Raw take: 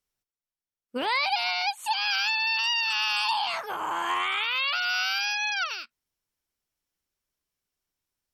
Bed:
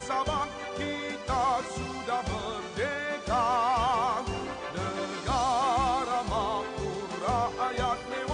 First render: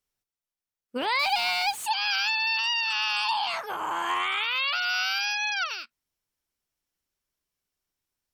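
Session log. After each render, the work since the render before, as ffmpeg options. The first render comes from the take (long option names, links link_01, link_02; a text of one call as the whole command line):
ffmpeg -i in.wav -filter_complex "[0:a]asettb=1/sr,asplit=3[link_01][link_02][link_03];[link_01]atrim=end=1.194[link_04];[link_02]atrim=start=1.19:end=1.86,asetpts=PTS-STARTPTS,afade=type=in:duration=0.004:curve=qsin,afade=type=out:start_time=0.666:duration=0.004:curve=qsin,aeval=exprs='val(0)+0.5*0.0178*sgn(val(0))':channel_layout=same[link_05];[link_03]atrim=start=1.856[link_06];[link_04][link_05]acrossfade=duration=0.004:curve1=hsin:curve2=qsin[link_07];[link_07][link_06]acrossfade=duration=0.004:curve1=qsin:curve2=hsin,asettb=1/sr,asplit=3[link_08][link_09][link_10];[link_08]atrim=end=2.594[link_11];[link_09]atrim=start=2.59:end=3.42,asetpts=PTS-STARTPTS,afade=type=in:duration=0.004:curve=qsin,afade=type=out:start_time=0.826:duration=0.004:curve=qsin,highshelf=frequency=10000:gain=-10[link_12];[link_10]atrim=start=3.416[link_13];[link_11][link_12]acrossfade=duration=0.004:curve1=hsin:curve2=qsin[link_14];[link_14][link_13]acrossfade=duration=0.004:curve1=qsin:curve2=hsin" out.wav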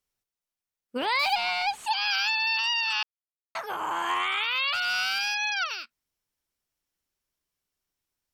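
ffmpeg -i in.wav -filter_complex "[0:a]asettb=1/sr,asplit=3[link_01][link_02][link_03];[link_01]atrim=end=1.354[link_04];[link_02]atrim=start=1.35:end=1.87,asetpts=PTS-STARTPTS,afade=type=in:duration=0.004:curve=qsin,afade=type=out:start_time=0.516:duration=0.004:curve=qsin,aemphasis=mode=reproduction:type=50fm[link_05];[link_03]atrim=start=1.866[link_06];[link_04][link_05]acrossfade=duration=0.004:curve1=hsin:curve2=qsin[link_07];[link_07][link_06]acrossfade=duration=0.004:curve1=qsin:curve2=hsin,asplit=3[link_08][link_09][link_10];[link_08]afade=type=out:start_time=4.73:duration=0.02[link_11];[link_09]volume=21dB,asoftclip=hard,volume=-21dB,afade=type=in:start_time=4.73:duration=0.02,afade=type=out:start_time=5.51:duration=0.02[link_12];[link_10]afade=type=in:start_time=5.51:duration=0.02[link_13];[link_11][link_12][link_13]amix=inputs=3:normalize=0,asplit=3[link_14][link_15][link_16];[link_14]atrim=end=3.03,asetpts=PTS-STARTPTS,afade=type=out:start_time=3.026:duration=0.004:curve=hsin[link_17];[link_15]atrim=start=3.03:end=3.55,asetpts=PTS-STARTPTS,volume=0[link_18];[link_16]atrim=start=3.55,asetpts=PTS-STARTPTS,afade=type=in:duration=0.004:curve=hsin[link_19];[link_17][link_18][link_19]concat=n=3:v=0:a=1" out.wav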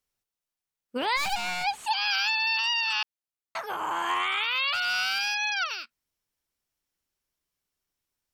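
ffmpeg -i in.wav -filter_complex "[0:a]asplit=3[link_01][link_02][link_03];[link_01]afade=type=out:start_time=1.16:duration=0.02[link_04];[link_02]aeval=exprs='clip(val(0),-1,0.0178)':channel_layout=same,afade=type=in:start_time=1.16:duration=0.02,afade=type=out:start_time=1.63:duration=0.02[link_05];[link_03]afade=type=in:start_time=1.63:duration=0.02[link_06];[link_04][link_05][link_06]amix=inputs=3:normalize=0" out.wav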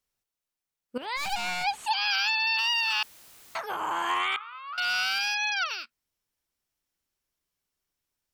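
ffmpeg -i in.wav -filter_complex "[0:a]asettb=1/sr,asplit=3[link_01][link_02][link_03];[link_01]atrim=end=2.584[link_04];[link_02]atrim=start=2.58:end=3.57,asetpts=PTS-STARTPTS,afade=type=in:duration=0.004:curve=qsin,afade=type=out:start_time=0.986:duration=0.004:curve=qsin,aeval=exprs='val(0)+0.5*0.00708*sgn(val(0))':channel_layout=same[link_05];[link_03]atrim=start=3.566[link_06];[link_04][link_05]acrossfade=duration=0.004:curve1=hsin:curve2=qsin[link_07];[link_07][link_06]acrossfade=duration=0.004:curve1=qsin:curve2=hsin,asettb=1/sr,asplit=3[link_08][link_09][link_10];[link_08]atrim=end=4.364[link_11];[link_09]atrim=start=4.36:end=4.78,asetpts=PTS-STARTPTS,afade=type=in:duration=0.004:curve=qsin,afade=type=out:start_time=0.416:duration=0.004:curve=qsin,bandpass=frequency=1200:width_type=q:width=7.8[link_12];[link_10]atrim=start=4.776[link_13];[link_11][link_12]acrossfade=duration=0.004:curve1=hsin:curve2=qsin[link_14];[link_14][link_13]acrossfade=duration=0.004:curve1=qsin:curve2=hsin,asplit=2[link_15][link_16];[link_15]atrim=end=0.98,asetpts=PTS-STARTPTS,afade=type=out:start_time=0.976:duration=0.004:curve=hsin:silence=0.211349[link_17];[link_16]atrim=start=0.98,asetpts=PTS-STARTPTS,afade=type=in:duration=0.43:silence=0.211349[link_18];[link_17][link_18]concat=n=2:v=0:a=1" out.wav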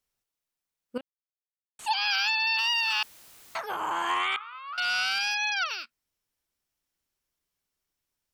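ffmpeg -i in.wav -filter_complex "[0:a]asettb=1/sr,asplit=3[link_01][link_02][link_03];[link_01]atrim=end=3.904[link_04];[link_02]atrim=start=3.9:end=5.31,asetpts=PTS-STARTPTS,afade=type=in:duration=0.004:curve=qsin,afade=type=out:start_time=1.406:duration=0.004:curve=qsin,lowpass=frequency=12000:width=0.5412,lowpass=frequency=12000:width=1.3066[link_05];[link_03]atrim=start=5.306[link_06];[link_04][link_05]acrossfade=duration=0.004:curve1=hsin:curve2=qsin[link_07];[link_07][link_06]acrossfade=duration=0.004:curve1=qsin:curve2=hsin,asplit=3[link_08][link_09][link_10];[link_08]atrim=end=1.01,asetpts=PTS-STARTPTS,afade=type=out:start_time=1.006:duration=0.004:curve=hsin[link_11];[link_09]atrim=start=1.01:end=1.79,asetpts=PTS-STARTPTS,volume=0[link_12];[link_10]atrim=start=1.79,asetpts=PTS-STARTPTS,afade=type=in:duration=0.004:curve=hsin[link_13];[link_11][link_12][link_13]concat=n=3:v=0:a=1" out.wav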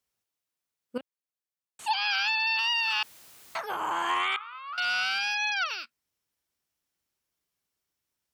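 ffmpeg -i in.wav -filter_complex "[0:a]highpass=59,acrossover=split=4500[link_01][link_02];[link_02]acompressor=threshold=-42dB:ratio=4:attack=1:release=60[link_03];[link_01][link_03]amix=inputs=2:normalize=0" out.wav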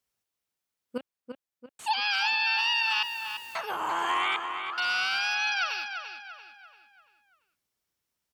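ffmpeg -i in.wav -filter_complex "[0:a]asplit=2[link_01][link_02];[link_02]adelay=341,lowpass=frequency=4000:poles=1,volume=-7dB,asplit=2[link_03][link_04];[link_04]adelay=341,lowpass=frequency=4000:poles=1,volume=0.45,asplit=2[link_05][link_06];[link_06]adelay=341,lowpass=frequency=4000:poles=1,volume=0.45,asplit=2[link_07][link_08];[link_08]adelay=341,lowpass=frequency=4000:poles=1,volume=0.45,asplit=2[link_09][link_10];[link_10]adelay=341,lowpass=frequency=4000:poles=1,volume=0.45[link_11];[link_01][link_03][link_05][link_07][link_09][link_11]amix=inputs=6:normalize=0" out.wav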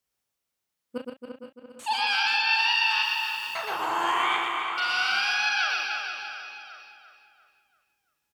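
ffmpeg -i in.wav -filter_complex "[0:a]asplit=2[link_01][link_02];[link_02]adelay=38,volume=-8dB[link_03];[link_01][link_03]amix=inputs=2:normalize=0,asplit=2[link_04][link_05];[link_05]aecho=0:1:120|276|478.8|742.4|1085:0.631|0.398|0.251|0.158|0.1[link_06];[link_04][link_06]amix=inputs=2:normalize=0" out.wav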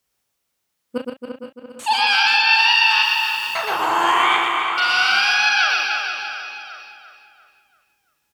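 ffmpeg -i in.wav -af "volume=8.5dB" out.wav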